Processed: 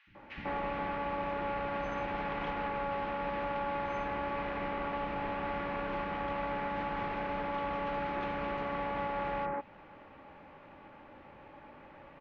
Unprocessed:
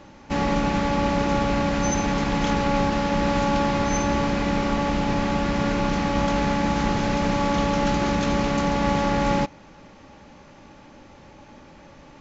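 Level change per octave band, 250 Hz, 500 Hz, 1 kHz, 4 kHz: -18.5 dB, -11.0 dB, -9.5 dB, -17.5 dB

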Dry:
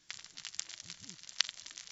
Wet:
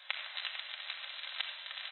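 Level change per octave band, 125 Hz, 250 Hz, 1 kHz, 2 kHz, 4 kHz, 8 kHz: under -40 dB, under -35 dB, +6.5 dB, +5.5 dB, +0.5 dB, no reading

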